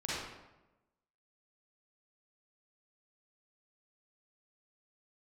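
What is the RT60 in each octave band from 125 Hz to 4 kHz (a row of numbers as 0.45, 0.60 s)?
1.1, 1.1, 1.1, 0.95, 0.85, 0.65 s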